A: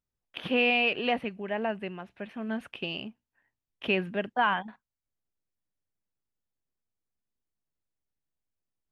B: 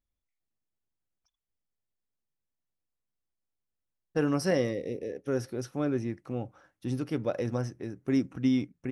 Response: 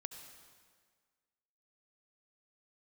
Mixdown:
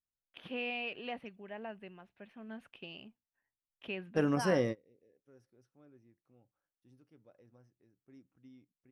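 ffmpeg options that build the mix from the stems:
-filter_complex "[0:a]volume=-13.5dB,afade=type=out:start_time=4.4:duration=0.44:silence=0.375837,asplit=2[link_01][link_02];[1:a]adynamicequalizer=threshold=0.00251:dfrequency=3000:dqfactor=0.7:tfrequency=3000:tqfactor=0.7:attack=5:release=100:ratio=0.375:range=3:mode=cutabove:tftype=highshelf,volume=-3dB[link_03];[link_02]apad=whole_len=393045[link_04];[link_03][link_04]sidechaingate=range=-29dB:threshold=-58dB:ratio=16:detection=peak[link_05];[link_01][link_05]amix=inputs=2:normalize=0"

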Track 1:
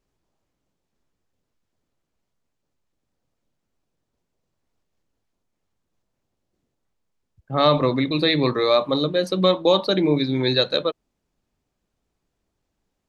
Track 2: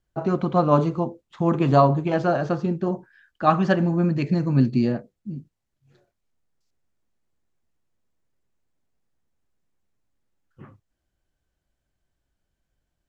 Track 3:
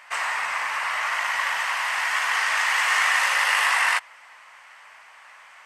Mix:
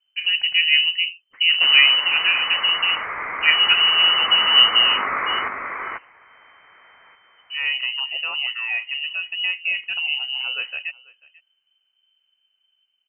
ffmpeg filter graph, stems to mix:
ffmpeg -i stem1.wav -i stem2.wav -i stem3.wav -filter_complex "[0:a]volume=-8.5dB,asplit=2[link_01][link_02];[link_02]volume=-23dB[link_03];[1:a]dynaudnorm=framelen=740:gausssize=3:maxgain=3.5dB,volume=-2dB[link_04];[2:a]adelay=1500,volume=-4dB,asplit=2[link_05][link_06];[link_06]volume=-4.5dB[link_07];[link_03][link_07]amix=inputs=2:normalize=0,aecho=0:1:491:1[link_08];[link_01][link_04][link_05][link_08]amix=inputs=4:normalize=0,lowshelf=frequency=290:gain=6.5,lowpass=frequency=2600:width_type=q:width=0.5098,lowpass=frequency=2600:width_type=q:width=0.6013,lowpass=frequency=2600:width_type=q:width=0.9,lowpass=frequency=2600:width_type=q:width=2.563,afreqshift=-3100" out.wav

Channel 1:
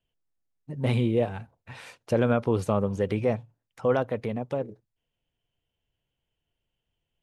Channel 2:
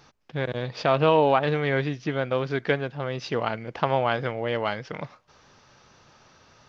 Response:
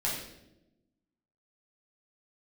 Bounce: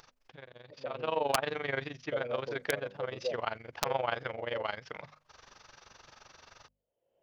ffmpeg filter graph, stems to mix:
-filter_complex "[0:a]bandpass=frequency=550:width_type=q:width=6.1:csg=0,volume=-4.5dB[link_01];[1:a]equalizer=frequency=190:width=0.6:gain=-10.5,tremolo=f=23:d=0.857,volume=-2.5dB,afade=type=in:start_time=0.88:duration=0.48:silence=0.223872,asplit=2[link_02][link_03];[link_03]apad=whole_len=318769[link_04];[link_01][link_04]sidechaincompress=threshold=-34dB:ratio=8:attack=16:release=145[link_05];[link_05][link_02]amix=inputs=2:normalize=0,bandreject=frequency=50:width_type=h:width=6,bandreject=frequency=100:width_type=h:width=6,bandreject=frequency=150:width_type=h:width=6,bandreject=frequency=200:width_type=h:width=6,bandreject=frequency=250:width_type=h:width=6,acompressor=mode=upward:threshold=-46dB:ratio=2.5,aeval=exprs='(mod(5.62*val(0)+1,2)-1)/5.62':channel_layout=same"

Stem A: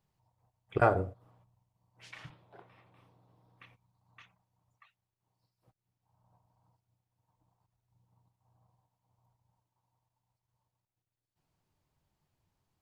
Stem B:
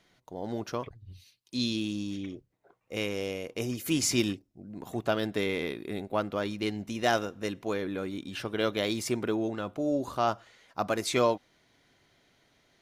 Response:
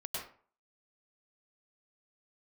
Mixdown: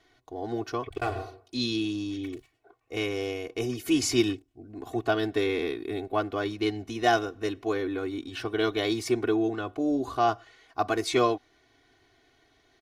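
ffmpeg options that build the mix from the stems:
-filter_complex "[0:a]highshelf=frequency=2200:width_type=q:width=1.5:gain=9.5,aeval=exprs='sgn(val(0))*max(abs(val(0))-0.0112,0)':channel_layout=same,adelay=200,volume=-8dB,asplit=2[link_01][link_02];[link_02]volume=-8.5dB[link_03];[1:a]highshelf=frequency=6500:gain=-8.5,volume=0dB[link_04];[2:a]atrim=start_sample=2205[link_05];[link_03][link_05]afir=irnorm=-1:irlink=0[link_06];[link_01][link_04][link_06]amix=inputs=3:normalize=0,aecho=1:1:2.7:0.99"

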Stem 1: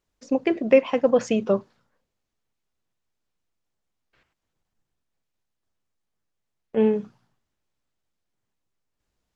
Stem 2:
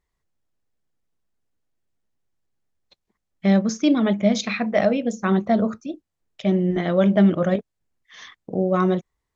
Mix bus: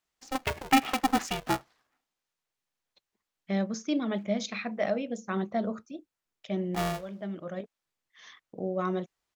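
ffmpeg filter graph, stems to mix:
ffmpeg -i stem1.wav -i stem2.wav -filter_complex "[0:a]highpass=670,aeval=exprs='val(0)*sgn(sin(2*PI*260*n/s))':channel_layout=same,volume=-1dB,asplit=2[link_01][link_02];[1:a]lowshelf=frequency=150:gain=-8.5,adelay=50,volume=-9dB[link_03];[link_02]apad=whole_len=414819[link_04];[link_03][link_04]sidechaincompress=threshold=-44dB:ratio=4:attack=32:release=914[link_05];[link_01][link_05]amix=inputs=2:normalize=0" out.wav

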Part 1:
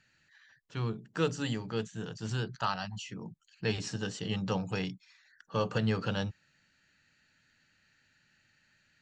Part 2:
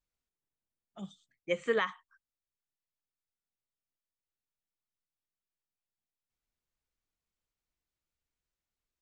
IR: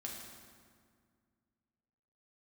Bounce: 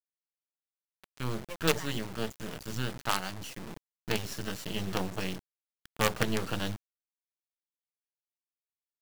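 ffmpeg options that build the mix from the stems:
-filter_complex "[0:a]adelay=450,volume=3dB[link_01];[1:a]volume=-7.5dB[link_02];[link_01][link_02]amix=inputs=2:normalize=0,acrusher=bits=4:dc=4:mix=0:aa=0.000001"

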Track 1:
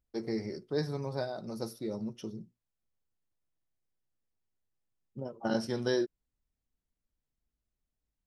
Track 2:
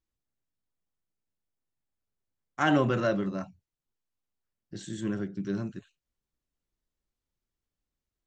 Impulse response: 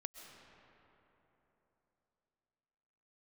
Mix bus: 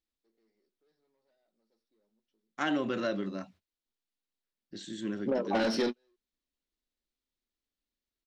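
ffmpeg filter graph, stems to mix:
-filter_complex "[0:a]asplit=2[link_01][link_02];[link_02]highpass=frequency=720:poles=1,volume=26dB,asoftclip=type=tanh:threshold=-16.5dB[link_03];[link_01][link_03]amix=inputs=2:normalize=0,lowpass=frequency=1700:poles=1,volume=-6dB,adelay=100,volume=-1dB[link_04];[1:a]volume=-7.5dB,asplit=2[link_05][link_06];[link_06]apad=whole_len=368684[link_07];[link_04][link_07]sidechaingate=range=-53dB:threshold=-58dB:ratio=16:detection=peak[link_08];[link_08][link_05]amix=inputs=2:normalize=0,equalizer=frequency=125:width_type=o:width=1:gain=-10,equalizer=frequency=250:width_type=o:width=1:gain=8,equalizer=frequency=500:width_type=o:width=1:gain=3,equalizer=frequency=2000:width_type=o:width=1:gain=4,equalizer=frequency=4000:width_type=o:width=1:gain=10,acompressor=threshold=-26dB:ratio=5"

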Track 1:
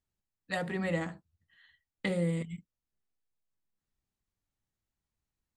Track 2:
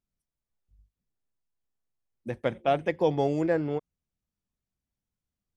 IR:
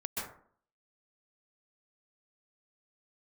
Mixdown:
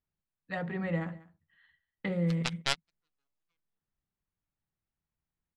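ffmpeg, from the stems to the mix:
-filter_complex "[0:a]lowpass=1700,equalizer=frequency=160:width_type=o:width=0.37:gain=6.5,volume=-3dB,asplit=3[link_01][link_02][link_03];[link_02]volume=-21dB[link_04];[1:a]highpass=1100,aeval=exprs='0.119*(cos(1*acos(clip(val(0)/0.119,-1,1)))-cos(1*PI/2))+0.0473*(cos(3*acos(clip(val(0)/0.119,-1,1)))-cos(3*PI/2))+0.0266*(cos(4*acos(clip(val(0)/0.119,-1,1)))-cos(4*PI/2))':channel_layout=same,volume=2dB[link_05];[link_03]apad=whole_len=245335[link_06];[link_05][link_06]sidechaingate=range=-49dB:threshold=-58dB:ratio=16:detection=peak[link_07];[link_04]aecho=0:1:192:1[link_08];[link_01][link_07][link_08]amix=inputs=3:normalize=0,highshelf=frequency=2200:gain=10.5"

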